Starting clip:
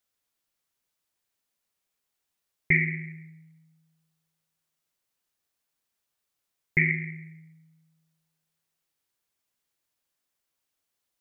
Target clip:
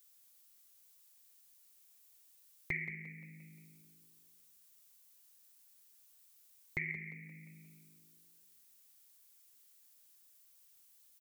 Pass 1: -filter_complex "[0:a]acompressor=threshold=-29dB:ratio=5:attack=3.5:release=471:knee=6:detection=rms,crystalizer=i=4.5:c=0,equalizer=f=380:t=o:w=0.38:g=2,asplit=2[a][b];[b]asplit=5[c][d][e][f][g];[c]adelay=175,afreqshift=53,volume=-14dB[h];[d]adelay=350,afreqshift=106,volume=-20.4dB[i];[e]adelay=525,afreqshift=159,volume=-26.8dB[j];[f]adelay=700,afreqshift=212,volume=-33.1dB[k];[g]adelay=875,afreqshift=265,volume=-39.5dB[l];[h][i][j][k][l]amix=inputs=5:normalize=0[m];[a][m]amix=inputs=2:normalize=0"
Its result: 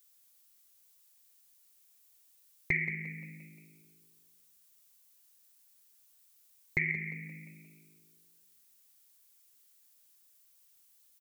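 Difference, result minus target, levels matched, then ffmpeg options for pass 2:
compressor: peak gain reduction -7.5 dB
-filter_complex "[0:a]acompressor=threshold=-38.5dB:ratio=5:attack=3.5:release=471:knee=6:detection=rms,crystalizer=i=4.5:c=0,equalizer=f=380:t=o:w=0.38:g=2,asplit=2[a][b];[b]asplit=5[c][d][e][f][g];[c]adelay=175,afreqshift=53,volume=-14dB[h];[d]adelay=350,afreqshift=106,volume=-20.4dB[i];[e]adelay=525,afreqshift=159,volume=-26.8dB[j];[f]adelay=700,afreqshift=212,volume=-33.1dB[k];[g]adelay=875,afreqshift=265,volume=-39.5dB[l];[h][i][j][k][l]amix=inputs=5:normalize=0[m];[a][m]amix=inputs=2:normalize=0"

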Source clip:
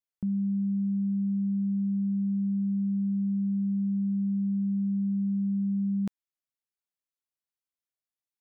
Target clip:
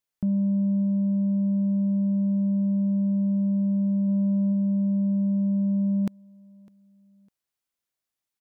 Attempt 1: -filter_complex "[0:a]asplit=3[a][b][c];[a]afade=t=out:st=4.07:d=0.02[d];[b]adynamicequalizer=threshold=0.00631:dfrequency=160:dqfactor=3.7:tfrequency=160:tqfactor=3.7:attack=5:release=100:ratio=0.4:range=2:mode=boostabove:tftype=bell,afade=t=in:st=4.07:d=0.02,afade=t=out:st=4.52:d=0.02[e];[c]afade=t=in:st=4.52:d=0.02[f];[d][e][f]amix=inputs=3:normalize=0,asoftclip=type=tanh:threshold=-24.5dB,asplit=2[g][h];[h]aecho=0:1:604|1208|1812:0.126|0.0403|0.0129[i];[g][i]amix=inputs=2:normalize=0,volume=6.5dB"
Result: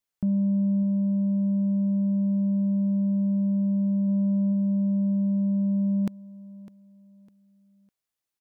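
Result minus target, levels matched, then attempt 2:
echo-to-direct +7 dB
-filter_complex "[0:a]asplit=3[a][b][c];[a]afade=t=out:st=4.07:d=0.02[d];[b]adynamicequalizer=threshold=0.00631:dfrequency=160:dqfactor=3.7:tfrequency=160:tqfactor=3.7:attack=5:release=100:ratio=0.4:range=2:mode=boostabove:tftype=bell,afade=t=in:st=4.07:d=0.02,afade=t=out:st=4.52:d=0.02[e];[c]afade=t=in:st=4.52:d=0.02[f];[d][e][f]amix=inputs=3:normalize=0,asoftclip=type=tanh:threshold=-24.5dB,asplit=2[g][h];[h]aecho=0:1:604|1208:0.0562|0.018[i];[g][i]amix=inputs=2:normalize=0,volume=6.5dB"

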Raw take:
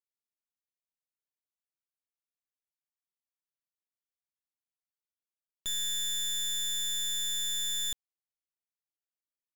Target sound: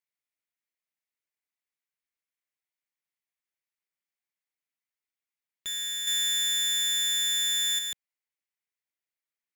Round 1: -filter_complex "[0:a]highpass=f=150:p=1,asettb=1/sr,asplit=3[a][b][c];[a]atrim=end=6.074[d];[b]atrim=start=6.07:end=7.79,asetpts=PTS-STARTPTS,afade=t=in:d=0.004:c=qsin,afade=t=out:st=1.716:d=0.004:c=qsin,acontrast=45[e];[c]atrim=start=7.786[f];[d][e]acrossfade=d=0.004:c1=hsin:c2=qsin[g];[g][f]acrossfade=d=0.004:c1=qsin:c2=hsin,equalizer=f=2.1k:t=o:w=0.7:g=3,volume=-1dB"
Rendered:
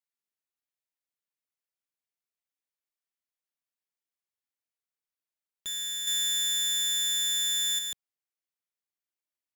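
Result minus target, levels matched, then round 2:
2000 Hz band -3.5 dB
-filter_complex "[0:a]highpass=f=150:p=1,asettb=1/sr,asplit=3[a][b][c];[a]atrim=end=6.074[d];[b]atrim=start=6.07:end=7.79,asetpts=PTS-STARTPTS,afade=t=in:d=0.004:c=qsin,afade=t=out:st=1.716:d=0.004:c=qsin,acontrast=45[e];[c]atrim=start=7.786[f];[d][e]acrossfade=d=0.004:c1=hsin:c2=qsin[g];[g][f]acrossfade=d=0.004:c1=qsin:c2=hsin,equalizer=f=2.1k:t=o:w=0.7:g=10.5,volume=-1dB"

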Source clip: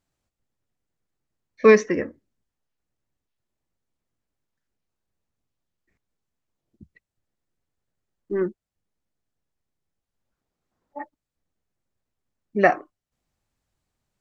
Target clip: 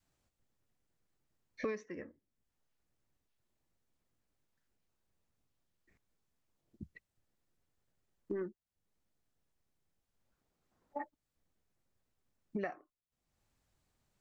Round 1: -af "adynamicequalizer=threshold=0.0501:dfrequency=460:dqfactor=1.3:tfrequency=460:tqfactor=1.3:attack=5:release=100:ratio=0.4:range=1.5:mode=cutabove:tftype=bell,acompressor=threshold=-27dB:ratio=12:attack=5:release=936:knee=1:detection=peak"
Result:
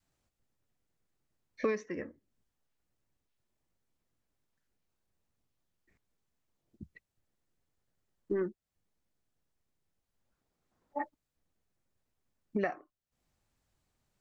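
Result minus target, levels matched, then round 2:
compressor: peak gain reduction -6.5 dB
-af "adynamicequalizer=threshold=0.0501:dfrequency=460:dqfactor=1.3:tfrequency=460:tqfactor=1.3:attack=5:release=100:ratio=0.4:range=1.5:mode=cutabove:tftype=bell,acompressor=threshold=-34dB:ratio=12:attack=5:release=936:knee=1:detection=peak"

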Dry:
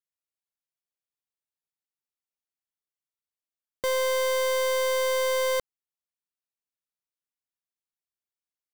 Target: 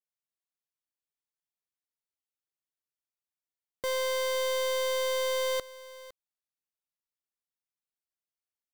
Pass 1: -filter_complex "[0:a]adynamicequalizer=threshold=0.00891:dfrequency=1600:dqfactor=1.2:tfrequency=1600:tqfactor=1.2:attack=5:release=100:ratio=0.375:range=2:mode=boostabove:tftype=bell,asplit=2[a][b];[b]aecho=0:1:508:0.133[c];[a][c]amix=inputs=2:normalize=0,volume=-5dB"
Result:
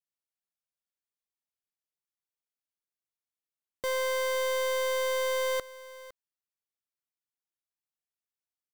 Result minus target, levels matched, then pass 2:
4000 Hz band -3.0 dB
-filter_complex "[0:a]adynamicequalizer=threshold=0.00891:dfrequency=3800:dqfactor=1.2:tfrequency=3800:tqfactor=1.2:attack=5:release=100:ratio=0.375:range=2:mode=boostabove:tftype=bell,asplit=2[a][b];[b]aecho=0:1:508:0.133[c];[a][c]amix=inputs=2:normalize=0,volume=-5dB"

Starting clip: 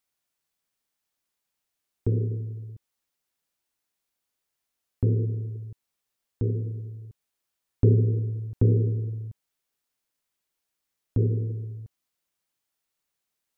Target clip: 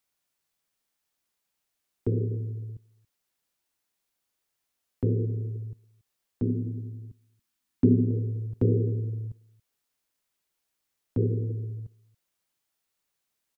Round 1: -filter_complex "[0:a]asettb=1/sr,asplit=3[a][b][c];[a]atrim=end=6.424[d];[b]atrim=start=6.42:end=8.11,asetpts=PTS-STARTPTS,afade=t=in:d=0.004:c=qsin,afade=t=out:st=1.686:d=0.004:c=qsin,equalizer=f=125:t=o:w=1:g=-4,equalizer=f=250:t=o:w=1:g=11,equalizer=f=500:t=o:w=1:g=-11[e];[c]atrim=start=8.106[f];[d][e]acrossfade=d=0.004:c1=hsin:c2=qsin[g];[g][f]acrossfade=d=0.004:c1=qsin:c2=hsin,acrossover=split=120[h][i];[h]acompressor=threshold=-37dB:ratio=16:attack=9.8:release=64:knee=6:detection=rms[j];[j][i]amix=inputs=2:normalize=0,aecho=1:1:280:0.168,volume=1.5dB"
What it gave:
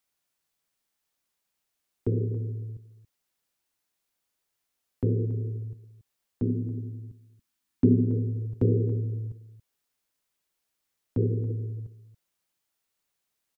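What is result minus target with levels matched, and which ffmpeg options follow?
echo-to-direct +6.5 dB
-filter_complex "[0:a]asettb=1/sr,asplit=3[a][b][c];[a]atrim=end=6.424[d];[b]atrim=start=6.42:end=8.11,asetpts=PTS-STARTPTS,afade=t=in:d=0.004:c=qsin,afade=t=out:st=1.686:d=0.004:c=qsin,equalizer=f=125:t=o:w=1:g=-4,equalizer=f=250:t=o:w=1:g=11,equalizer=f=500:t=o:w=1:g=-11[e];[c]atrim=start=8.106[f];[d][e]acrossfade=d=0.004:c1=hsin:c2=qsin[g];[g][f]acrossfade=d=0.004:c1=qsin:c2=hsin,acrossover=split=120[h][i];[h]acompressor=threshold=-37dB:ratio=16:attack=9.8:release=64:knee=6:detection=rms[j];[j][i]amix=inputs=2:normalize=0,aecho=1:1:280:0.0501,volume=1.5dB"

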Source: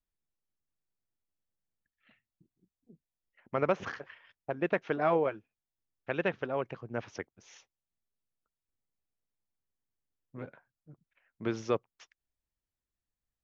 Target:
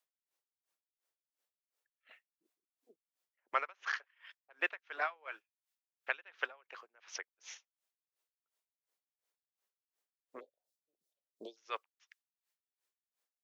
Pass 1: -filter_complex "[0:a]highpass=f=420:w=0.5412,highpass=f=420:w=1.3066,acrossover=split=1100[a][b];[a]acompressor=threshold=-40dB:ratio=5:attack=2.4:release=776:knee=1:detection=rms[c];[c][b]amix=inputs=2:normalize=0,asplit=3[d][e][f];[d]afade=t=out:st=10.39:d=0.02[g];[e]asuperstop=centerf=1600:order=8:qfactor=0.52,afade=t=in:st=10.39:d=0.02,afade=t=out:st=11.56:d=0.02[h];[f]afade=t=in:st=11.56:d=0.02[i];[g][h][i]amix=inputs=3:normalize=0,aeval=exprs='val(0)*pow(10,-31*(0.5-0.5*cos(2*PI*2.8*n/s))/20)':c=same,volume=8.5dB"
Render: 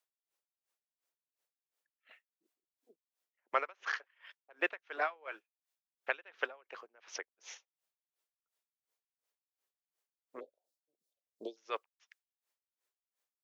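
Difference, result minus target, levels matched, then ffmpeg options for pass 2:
compressor: peak gain reduction -8 dB
-filter_complex "[0:a]highpass=f=420:w=0.5412,highpass=f=420:w=1.3066,acrossover=split=1100[a][b];[a]acompressor=threshold=-50dB:ratio=5:attack=2.4:release=776:knee=1:detection=rms[c];[c][b]amix=inputs=2:normalize=0,asplit=3[d][e][f];[d]afade=t=out:st=10.39:d=0.02[g];[e]asuperstop=centerf=1600:order=8:qfactor=0.52,afade=t=in:st=10.39:d=0.02,afade=t=out:st=11.56:d=0.02[h];[f]afade=t=in:st=11.56:d=0.02[i];[g][h][i]amix=inputs=3:normalize=0,aeval=exprs='val(0)*pow(10,-31*(0.5-0.5*cos(2*PI*2.8*n/s))/20)':c=same,volume=8.5dB"

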